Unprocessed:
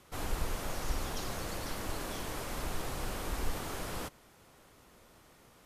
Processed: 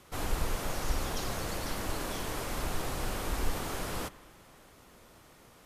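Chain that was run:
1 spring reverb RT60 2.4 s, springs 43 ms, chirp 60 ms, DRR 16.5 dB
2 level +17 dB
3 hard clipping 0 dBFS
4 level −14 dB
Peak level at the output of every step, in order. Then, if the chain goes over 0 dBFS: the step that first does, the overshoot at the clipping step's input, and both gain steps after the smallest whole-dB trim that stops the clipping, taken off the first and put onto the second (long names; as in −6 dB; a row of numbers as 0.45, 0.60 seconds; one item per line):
−20.5, −3.5, −3.5, −17.5 dBFS
no step passes full scale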